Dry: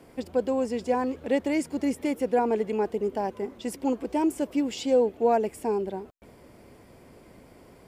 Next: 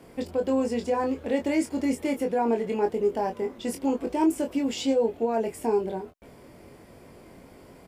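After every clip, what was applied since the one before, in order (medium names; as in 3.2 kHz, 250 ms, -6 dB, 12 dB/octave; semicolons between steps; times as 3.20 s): peak limiter -19.5 dBFS, peak gain reduction 7.5 dB; on a send: early reflections 22 ms -5 dB, 34 ms -12 dB; on the sum: trim +1 dB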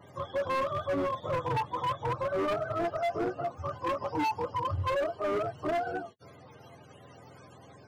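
spectrum inverted on a logarithmic axis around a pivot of 530 Hz; overload inside the chain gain 26.5 dB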